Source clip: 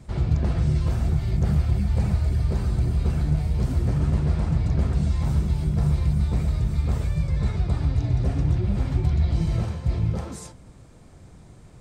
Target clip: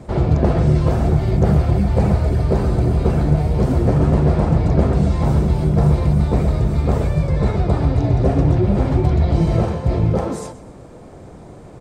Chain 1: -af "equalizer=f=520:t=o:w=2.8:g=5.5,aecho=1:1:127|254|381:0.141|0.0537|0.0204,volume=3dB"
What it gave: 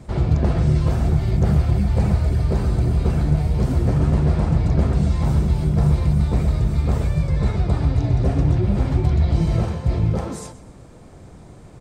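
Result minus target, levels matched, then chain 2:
500 Hz band -5.0 dB
-af "equalizer=f=520:t=o:w=2.8:g=13.5,aecho=1:1:127|254|381:0.141|0.0537|0.0204,volume=3dB"

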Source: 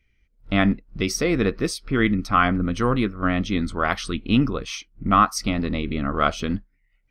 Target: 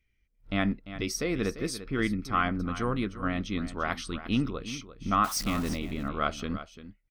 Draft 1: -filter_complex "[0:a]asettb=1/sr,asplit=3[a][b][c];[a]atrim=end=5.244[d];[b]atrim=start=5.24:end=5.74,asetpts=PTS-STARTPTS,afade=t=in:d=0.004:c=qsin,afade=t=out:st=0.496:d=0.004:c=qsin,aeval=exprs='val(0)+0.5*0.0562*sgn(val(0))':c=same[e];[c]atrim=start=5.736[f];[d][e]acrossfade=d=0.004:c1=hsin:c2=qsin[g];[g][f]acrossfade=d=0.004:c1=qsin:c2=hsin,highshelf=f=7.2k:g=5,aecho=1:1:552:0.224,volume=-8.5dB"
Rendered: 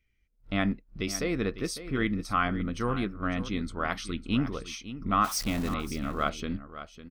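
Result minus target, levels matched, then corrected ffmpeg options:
echo 0.207 s late
-filter_complex "[0:a]asettb=1/sr,asplit=3[a][b][c];[a]atrim=end=5.244[d];[b]atrim=start=5.24:end=5.74,asetpts=PTS-STARTPTS,afade=t=in:d=0.004:c=qsin,afade=t=out:st=0.496:d=0.004:c=qsin,aeval=exprs='val(0)+0.5*0.0562*sgn(val(0))':c=same[e];[c]atrim=start=5.736[f];[d][e]acrossfade=d=0.004:c1=hsin:c2=qsin[g];[g][f]acrossfade=d=0.004:c1=qsin:c2=hsin,highshelf=f=7.2k:g=5,aecho=1:1:345:0.224,volume=-8.5dB"

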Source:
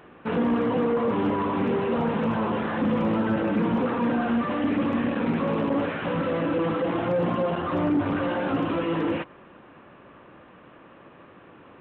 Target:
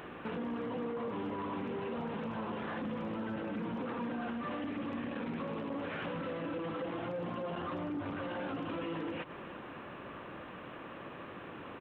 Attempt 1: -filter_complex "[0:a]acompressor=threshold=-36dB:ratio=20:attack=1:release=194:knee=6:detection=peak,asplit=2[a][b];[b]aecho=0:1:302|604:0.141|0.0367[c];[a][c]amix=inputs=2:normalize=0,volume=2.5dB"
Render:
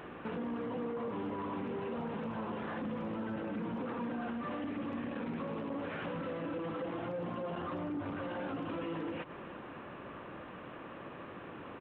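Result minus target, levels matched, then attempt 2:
4000 Hz band -3.0 dB
-filter_complex "[0:a]acompressor=threshold=-36dB:ratio=20:attack=1:release=194:knee=6:detection=peak,highshelf=f=2.7k:g=5.5,asplit=2[a][b];[b]aecho=0:1:302|604:0.141|0.0367[c];[a][c]amix=inputs=2:normalize=0,volume=2.5dB"

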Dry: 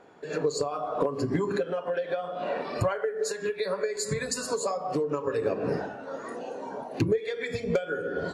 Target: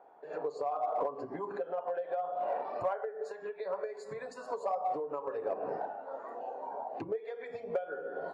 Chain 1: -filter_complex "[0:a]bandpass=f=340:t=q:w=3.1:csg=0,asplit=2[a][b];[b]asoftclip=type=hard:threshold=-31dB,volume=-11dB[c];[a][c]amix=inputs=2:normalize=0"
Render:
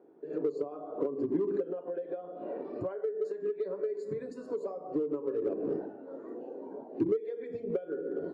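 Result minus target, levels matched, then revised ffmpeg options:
1000 Hz band -15.0 dB
-filter_complex "[0:a]bandpass=f=770:t=q:w=3.1:csg=0,asplit=2[a][b];[b]asoftclip=type=hard:threshold=-31dB,volume=-11dB[c];[a][c]amix=inputs=2:normalize=0"

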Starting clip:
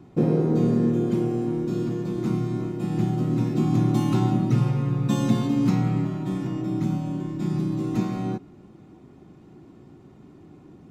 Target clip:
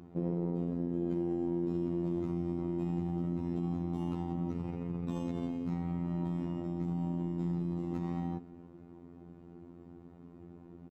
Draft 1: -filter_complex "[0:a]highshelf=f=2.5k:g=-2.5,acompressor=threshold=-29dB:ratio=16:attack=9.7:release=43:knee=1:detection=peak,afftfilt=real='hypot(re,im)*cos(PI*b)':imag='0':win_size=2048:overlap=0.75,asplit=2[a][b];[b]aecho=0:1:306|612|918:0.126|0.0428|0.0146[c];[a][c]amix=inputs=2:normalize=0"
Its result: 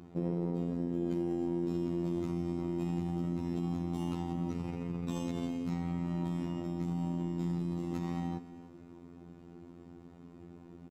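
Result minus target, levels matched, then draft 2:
4000 Hz band +7.5 dB; echo-to-direct +8.5 dB
-filter_complex "[0:a]highshelf=f=2.5k:g=-14.5,acompressor=threshold=-29dB:ratio=16:attack=9.7:release=43:knee=1:detection=peak,afftfilt=real='hypot(re,im)*cos(PI*b)':imag='0':win_size=2048:overlap=0.75,asplit=2[a][b];[b]aecho=0:1:306|612:0.0473|0.0161[c];[a][c]amix=inputs=2:normalize=0"

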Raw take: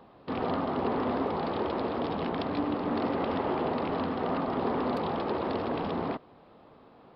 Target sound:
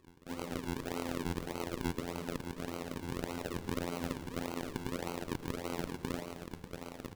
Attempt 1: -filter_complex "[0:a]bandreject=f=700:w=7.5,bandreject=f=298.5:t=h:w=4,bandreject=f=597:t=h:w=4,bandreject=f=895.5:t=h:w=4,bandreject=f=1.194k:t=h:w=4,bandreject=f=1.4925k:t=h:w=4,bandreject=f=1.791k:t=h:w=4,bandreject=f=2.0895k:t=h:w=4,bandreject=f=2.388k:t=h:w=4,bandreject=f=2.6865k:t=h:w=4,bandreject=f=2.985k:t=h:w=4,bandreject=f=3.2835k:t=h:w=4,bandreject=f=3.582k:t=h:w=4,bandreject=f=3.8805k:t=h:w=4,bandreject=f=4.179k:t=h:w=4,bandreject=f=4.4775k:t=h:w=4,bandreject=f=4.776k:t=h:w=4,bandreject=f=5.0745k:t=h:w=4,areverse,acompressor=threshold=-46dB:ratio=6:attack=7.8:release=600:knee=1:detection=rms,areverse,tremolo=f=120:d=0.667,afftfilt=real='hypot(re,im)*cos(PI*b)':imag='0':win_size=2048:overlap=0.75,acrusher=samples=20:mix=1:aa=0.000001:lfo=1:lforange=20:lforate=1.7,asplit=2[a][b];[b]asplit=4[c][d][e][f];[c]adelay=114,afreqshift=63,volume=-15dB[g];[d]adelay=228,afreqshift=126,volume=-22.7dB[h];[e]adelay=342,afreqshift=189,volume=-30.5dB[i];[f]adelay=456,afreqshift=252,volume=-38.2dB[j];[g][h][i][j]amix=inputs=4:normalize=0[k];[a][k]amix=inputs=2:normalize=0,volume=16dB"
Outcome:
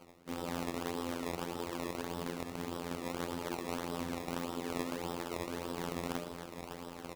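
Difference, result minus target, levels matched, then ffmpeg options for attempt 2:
decimation with a swept rate: distortion -10 dB
-filter_complex "[0:a]bandreject=f=700:w=7.5,bandreject=f=298.5:t=h:w=4,bandreject=f=597:t=h:w=4,bandreject=f=895.5:t=h:w=4,bandreject=f=1.194k:t=h:w=4,bandreject=f=1.4925k:t=h:w=4,bandreject=f=1.791k:t=h:w=4,bandreject=f=2.0895k:t=h:w=4,bandreject=f=2.388k:t=h:w=4,bandreject=f=2.6865k:t=h:w=4,bandreject=f=2.985k:t=h:w=4,bandreject=f=3.2835k:t=h:w=4,bandreject=f=3.582k:t=h:w=4,bandreject=f=3.8805k:t=h:w=4,bandreject=f=4.179k:t=h:w=4,bandreject=f=4.4775k:t=h:w=4,bandreject=f=4.776k:t=h:w=4,bandreject=f=5.0745k:t=h:w=4,areverse,acompressor=threshold=-46dB:ratio=6:attack=7.8:release=600:knee=1:detection=rms,areverse,tremolo=f=120:d=0.667,afftfilt=real='hypot(re,im)*cos(PI*b)':imag='0':win_size=2048:overlap=0.75,acrusher=samples=49:mix=1:aa=0.000001:lfo=1:lforange=49:lforate=1.7,asplit=2[a][b];[b]asplit=4[c][d][e][f];[c]adelay=114,afreqshift=63,volume=-15dB[g];[d]adelay=228,afreqshift=126,volume=-22.7dB[h];[e]adelay=342,afreqshift=189,volume=-30.5dB[i];[f]adelay=456,afreqshift=252,volume=-38.2dB[j];[g][h][i][j]amix=inputs=4:normalize=0[k];[a][k]amix=inputs=2:normalize=0,volume=16dB"

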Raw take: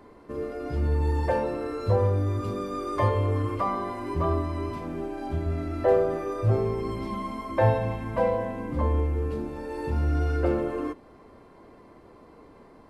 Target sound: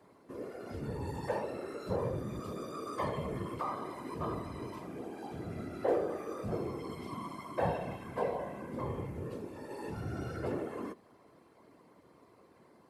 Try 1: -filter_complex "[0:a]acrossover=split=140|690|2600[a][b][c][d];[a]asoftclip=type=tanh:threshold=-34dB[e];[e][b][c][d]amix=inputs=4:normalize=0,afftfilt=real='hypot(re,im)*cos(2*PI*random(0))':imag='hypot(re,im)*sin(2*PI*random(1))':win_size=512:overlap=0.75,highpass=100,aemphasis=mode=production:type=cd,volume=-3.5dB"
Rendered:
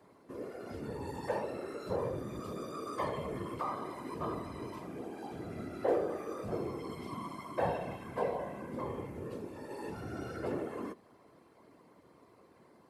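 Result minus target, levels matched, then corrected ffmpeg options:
soft clip: distortion +10 dB
-filter_complex "[0:a]acrossover=split=140|690|2600[a][b][c][d];[a]asoftclip=type=tanh:threshold=-24dB[e];[e][b][c][d]amix=inputs=4:normalize=0,afftfilt=real='hypot(re,im)*cos(2*PI*random(0))':imag='hypot(re,im)*sin(2*PI*random(1))':win_size=512:overlap=0.75,highpass=100,aemphasis=mode=production:type=cd,volume=-3.5dB"

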